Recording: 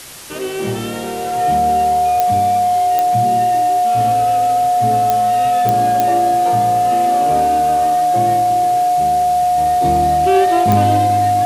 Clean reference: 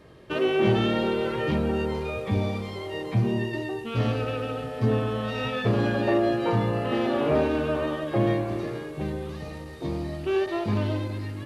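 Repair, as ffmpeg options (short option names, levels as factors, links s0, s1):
-af "adeclick=t=4,bandreject=f=720:w=30,afwtdn=0.022,asetnsamples=n=441:p=0,asendcmd='9.58 volume volume -9.5dB',volume=1"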